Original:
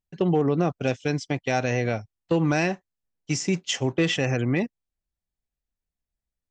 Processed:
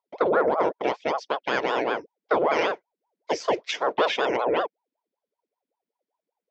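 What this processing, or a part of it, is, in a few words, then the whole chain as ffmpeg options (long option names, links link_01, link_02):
voice changer toy: -af "aeval=exprs='val(0)*sin(2*PI*580*n/s+580*0.7/5.2*sin(2*PI*5.2*n/s))':channel_layout=same,highpass=440,equalizer=frequency=460:width_type=q:width=4:gain=4,equalizer=frequency=790:width_type=q:width=4:gain=-4,equalizer=frequency=1200:width_type=q:width=4:gain=-9,equalizer=frequency=1700:width_type=q:width=4:gain=-4,equalizer=frequency=2800:width_type=q:width=4:gain=-7,equalizer=frequency=4000:width_type=q:width=4:gain=-6,lowpass=frequency=4400:width=0.5412,lowpass=frequency=4400:width=1.3066,volume=7dB"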